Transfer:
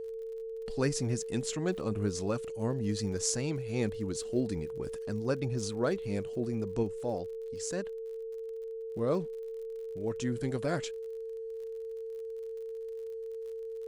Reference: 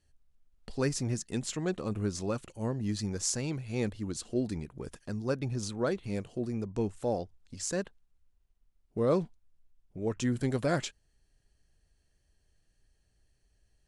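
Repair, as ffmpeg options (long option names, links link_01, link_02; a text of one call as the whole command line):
ffmpeg -i in.wav -af "adeclick=threshold=4,bandreject=frequency=450:width=30,asetnsamples=nb_out_samples=441:pad=0,asendcmd='6.83 volume volume 3.5dB',volume=0dB" out.wav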